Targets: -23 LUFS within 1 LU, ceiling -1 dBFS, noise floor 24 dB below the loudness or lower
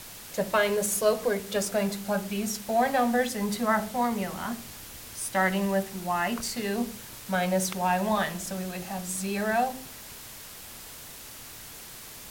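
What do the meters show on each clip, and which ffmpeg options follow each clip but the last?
noise floor -44 dBFS; noise floor target -52 dBFS; loudness -28.0 LUFS; peak -11.0 dBFS; loudness target -23.0 LUFS
-> -af "afftdn=nr=8:nf=-44"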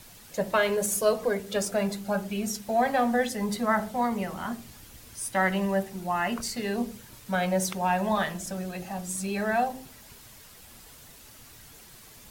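noise floor -50 dBFS; noise floor target -52 dBFS
-> -af "afftdn=nr=6:nf=-50"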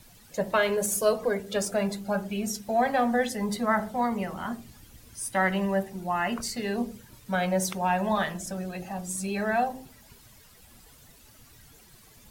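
noise floor -55 dBFS; loudness -28.0 LUFS; peak -11.0 dBFS; loudness target -23.0 LUFS
-> -af "volume=5dB"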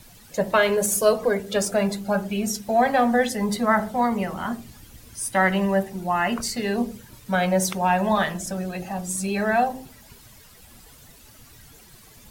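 loudness -23.0 LUFS; peak -6.0 dBFS; noise floor -50 dBFS

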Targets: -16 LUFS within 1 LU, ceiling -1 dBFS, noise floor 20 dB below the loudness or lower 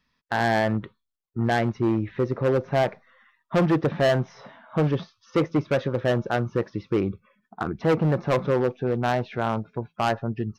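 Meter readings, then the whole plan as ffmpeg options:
loudness -25.0 LUFS; peak -15.0 dBFS; loudness target -16.0 LUFS
-> -af "volume=9dB"

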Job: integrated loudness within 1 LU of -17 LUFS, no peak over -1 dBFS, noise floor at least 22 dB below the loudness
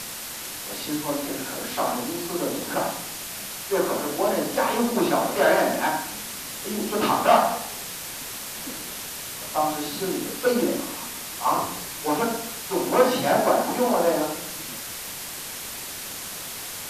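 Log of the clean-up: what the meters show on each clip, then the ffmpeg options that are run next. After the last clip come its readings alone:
noise floor -35 dBFS; noise floor target -48 dBFS; loudness -25.5 LUFS; peak -5.0 dBFS; loudness target -17.0 LUFS
-> -af "afftdn=nr=13:nf=-35"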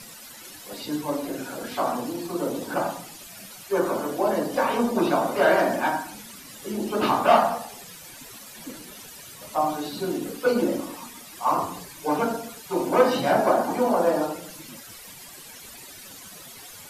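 noise floor -44 dBFS; noise floor target -47 dBFS
-> -af "afftdn=nr=6:nf=-44"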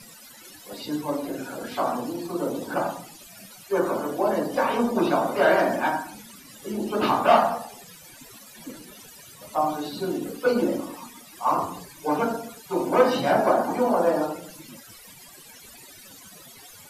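noise floor -47 dBFS; loudness -24.5 LUFS; peak -5.0 dBFS; loudness target -17.0 LUFS
-> -af "volume=7.5dB,alimiter=limit=-1dB:level=0:latency=1"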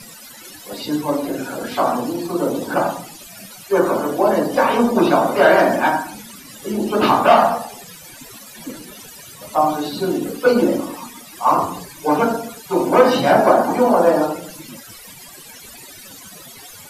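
loudness -17.5 LUFS; peak -1.0 dBFS; noise floor -40 dBFS

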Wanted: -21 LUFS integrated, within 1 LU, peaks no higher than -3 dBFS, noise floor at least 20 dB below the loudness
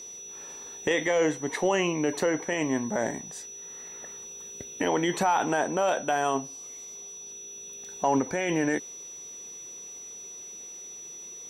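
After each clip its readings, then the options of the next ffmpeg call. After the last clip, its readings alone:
steady tone 5900 Hz; tone level -40 dBFS; loudness -30.0 LUFS; peak -13.0 dBFS; loudness target -21.0 LUFS
-> -af "bandreject=f=5.9k:w=30"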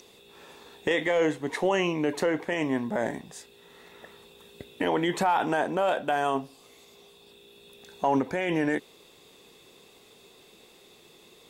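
steady tone none; loudness -27.5 LUFS; peak -13.0 dBFS; loudness target -21.0 LUFS
-> -af "volume=6.5dB"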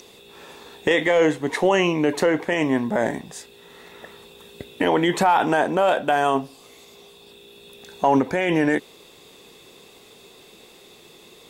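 loudness -21.0 LUFS; peak -6.5 dBFS; noise floor -49 dBFS

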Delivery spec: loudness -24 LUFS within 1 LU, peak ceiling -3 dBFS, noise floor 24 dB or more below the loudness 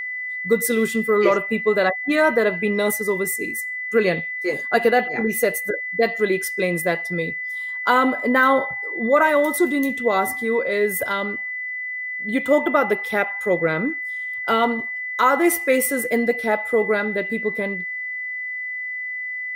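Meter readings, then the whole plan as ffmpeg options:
steady tone 2000 Hz; tone level -26 dBFS; loudness -21.0 LUFS; peak -5.0 dBFS; loudness target -24.0 LUFS
-> -af "bandreject=f=2k:w=30"
-af "volume=-3dB"

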